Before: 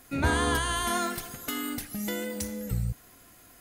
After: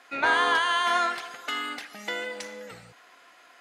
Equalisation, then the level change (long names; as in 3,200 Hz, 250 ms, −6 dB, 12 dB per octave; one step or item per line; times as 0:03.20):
band-pass filter 740–3,400 Hz
+7.5 dB